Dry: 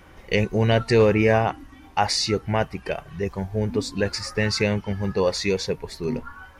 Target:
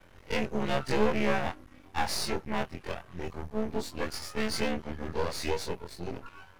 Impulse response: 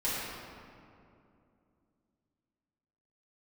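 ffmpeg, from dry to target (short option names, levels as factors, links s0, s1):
-af "afftfilt=real='re':imag='-im':win_size=2048:overlap=0.75,aeval=exprs='max(val(0),0)':c=same"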